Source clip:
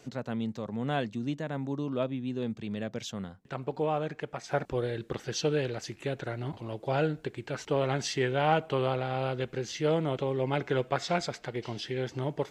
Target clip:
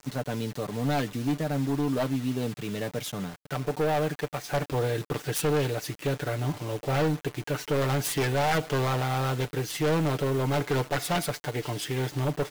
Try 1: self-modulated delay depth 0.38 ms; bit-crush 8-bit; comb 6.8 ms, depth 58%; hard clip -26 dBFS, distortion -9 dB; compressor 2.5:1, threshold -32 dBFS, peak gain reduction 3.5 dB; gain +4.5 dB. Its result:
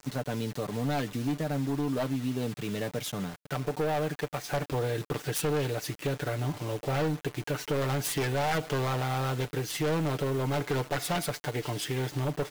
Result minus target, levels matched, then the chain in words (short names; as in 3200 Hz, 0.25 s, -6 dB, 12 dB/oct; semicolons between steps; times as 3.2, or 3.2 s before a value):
compressor: peak gain reduction +3.5 dB
self-modulated delay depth 0.38 ms; bit-crush 8-bit; comb 6.8 ms, depth 58%; hard clip -26 dBFS, distortion -9 dB; gain +4.5 dB